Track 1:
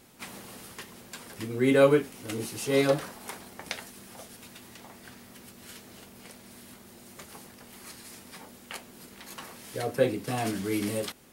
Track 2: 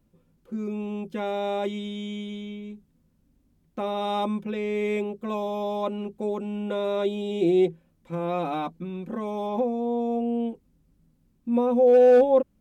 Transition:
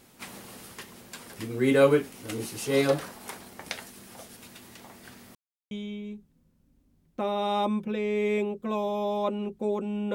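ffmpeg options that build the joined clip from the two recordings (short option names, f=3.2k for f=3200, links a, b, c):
-filter_complex "[0:a]apad=whole_dur=10.14,atrim=end=10.14,asplit=2[a][b];[a]atrim=end=5.35,asetpts=PTS-STARTPTS,afade=t=out:st=5.346:d=0.004:c=hsin[c];[b]atrim=start=5.35:end=5.71,asetpts=PTS-STARTPTS,volume=0[d];[1:a]atrim=start=2.3:end=6.73,asetpts=PTS-STARTPTS,afade=t=in:d=0.004:c=hsin[e];[c][d][e]concat=n=3:v=0:a=1"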